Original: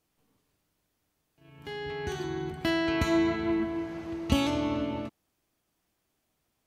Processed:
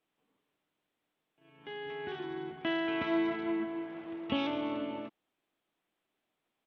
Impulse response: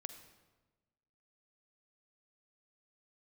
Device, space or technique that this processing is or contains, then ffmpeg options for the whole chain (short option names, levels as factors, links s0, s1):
Bluetooth headset: -af "highpass=240,aresample=8000,aresample=44100,volume=0.631" -ar 32000 -c:a sbc -b:a 64k